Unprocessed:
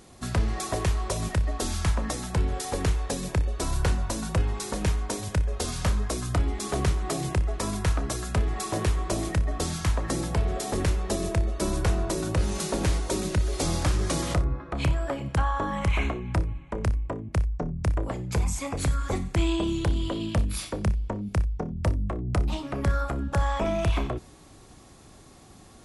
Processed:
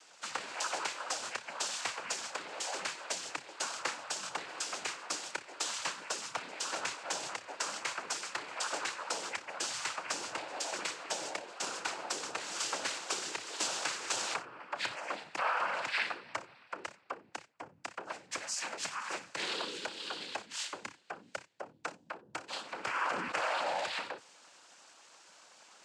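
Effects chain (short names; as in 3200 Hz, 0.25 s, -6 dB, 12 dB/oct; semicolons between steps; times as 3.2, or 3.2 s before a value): HPF 980 Hz 12 dB/oct; noise vocoder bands 8; 22.81–23.8 sustainer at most 32 dB/s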